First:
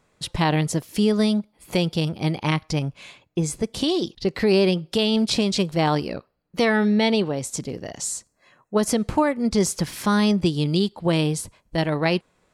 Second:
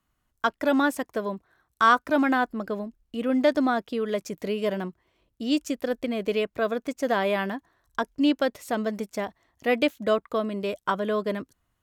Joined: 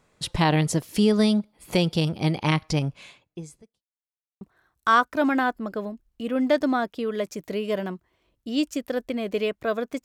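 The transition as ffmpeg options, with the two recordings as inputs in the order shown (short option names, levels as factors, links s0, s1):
-filter_complex "[0:a]apad=whole_dur=10.04,atrim=end=10.04,asplit=2[s0][s1];[s0]atrim=end=3.83,asetpts=PTS-STARTPTS,afade=t=out:st=2.88:d=0.95:c=qua[s2];[s1]atrim=start=3.83:end=4.41,asetpts=PTS-STARTPTS,volume=0[s3];[1:a]atrim=start=1.35:end=6.98,asetpts=PTS-STARTPTS,afade=t=in:d=0.004:c=hsin[s4];[s2][s3][s4]concat=n=3:v=0:a=1"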